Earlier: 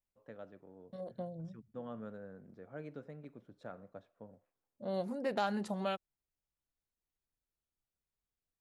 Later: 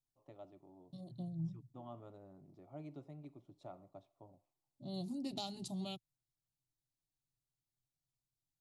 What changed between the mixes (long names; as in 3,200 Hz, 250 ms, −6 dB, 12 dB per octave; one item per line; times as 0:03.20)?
second voice: add octave-band graphic EQ 125/250/500/1,000/2,000/4,000/8,000 Hz +11/+5/−9/−12/−8/+7/+4 dB
master: add phaser with its sweep stopped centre 320 Hz, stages 8